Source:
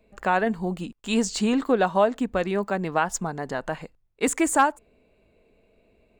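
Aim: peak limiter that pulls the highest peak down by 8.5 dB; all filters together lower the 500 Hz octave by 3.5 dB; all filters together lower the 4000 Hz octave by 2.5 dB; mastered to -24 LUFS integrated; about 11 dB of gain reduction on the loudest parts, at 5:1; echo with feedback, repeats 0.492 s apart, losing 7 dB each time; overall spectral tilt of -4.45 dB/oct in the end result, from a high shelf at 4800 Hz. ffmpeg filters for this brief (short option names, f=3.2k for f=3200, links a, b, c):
-af "equalizer=f=500:t=o:g=-4.5,equalizer=f=4k:t=o:g=-6.5,highshelf=f=4.8k:g=6.5,acompressor=threshold=-28dB:ratio=5,alimiter=level_in=1dB:limit=-24dB:level=0:latency=1,volume=-1dB,aecho=1:1:492|984|1476|1968|2460:0.447|0.201|0.0905|0.0407|0.0183,volume=11dB"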